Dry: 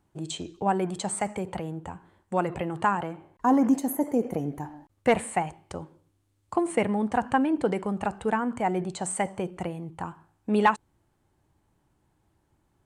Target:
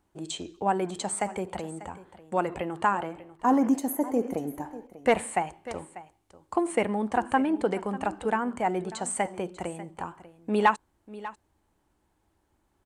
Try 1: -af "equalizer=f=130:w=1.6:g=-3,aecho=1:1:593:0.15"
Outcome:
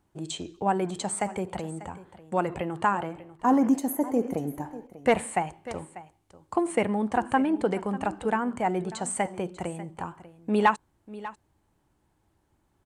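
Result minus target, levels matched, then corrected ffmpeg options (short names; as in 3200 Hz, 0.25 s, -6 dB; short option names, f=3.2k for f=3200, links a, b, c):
125 Hz band +3.0 dB
-af "equalizer=f=130:w=1.6:g=-10.5,aecho=1:1:593:0.15"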